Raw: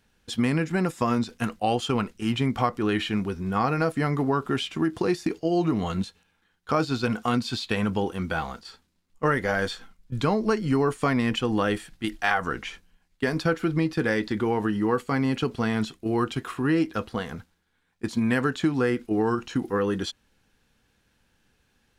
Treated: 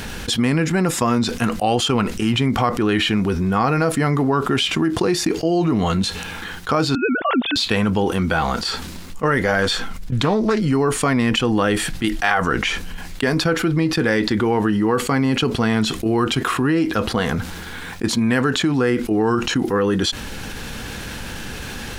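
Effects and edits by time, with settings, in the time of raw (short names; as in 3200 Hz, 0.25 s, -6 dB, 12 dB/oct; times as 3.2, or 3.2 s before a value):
6.95–7.56 sine-wave speech
9.63–10.62 Doppler distortion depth 0.3 ms
whole clip: fast leveller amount 70%; gain +1 dB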